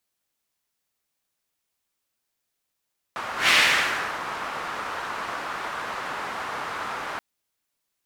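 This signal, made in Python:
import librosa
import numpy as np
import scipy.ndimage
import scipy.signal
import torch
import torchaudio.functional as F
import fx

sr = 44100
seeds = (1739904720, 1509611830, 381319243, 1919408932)

y = fx.whoosh(sr, seeds[0], length_s=4.03, peak_s=0.34, rise_s=0.15, fall_s=0.74, ends_hz=1200.0, peak_hz=2400.0, q=1.7, swell_db=14.5)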